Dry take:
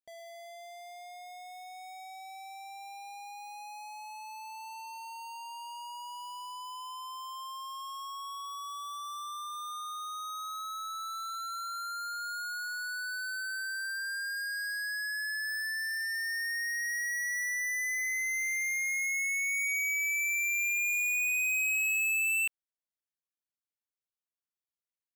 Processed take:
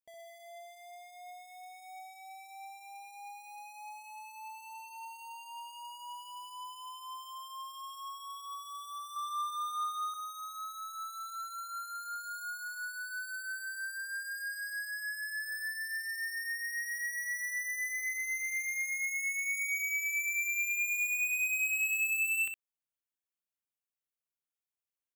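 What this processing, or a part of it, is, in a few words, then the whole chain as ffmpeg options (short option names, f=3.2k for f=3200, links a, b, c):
exciter from parts: -filter_complex "[0:a]asplit=2[a][b];[b]highpass=f=2.7k:w=0.5412,highpass=f=2.7k:w=1.3066,asoftclip=type=tanh:threshold=-33.5dB,highpass=f=2.4k:w=0.5412,highpass=f=2.4k:w=1.3066,volume=-6dB[c];[a][c]amix=inputs=2:normalize=0,asettb=1/sr,asplit=3[d][e][f];[d]atrim=end=9.164[g];[e]atrim=start=9.16:end=10.14,asetpts=PTS-STARTPTS,afade=t=in:d=0.004:c=qsin,afade=t=out:st=0.976:d=0.004:c=qsin,equalizer=f=1.5k:t=o:w=2.7:g=8[h];[f]atrim=start=10.136[i];[g][h]acrossfade=d=0.004:c1=hsin:c2=qsin[j];[j][i]acrossfade=d=0.004:c1=qsin:c2=hsin,aecho=1:1:32|64:0.126|0.398,volume=-4dB"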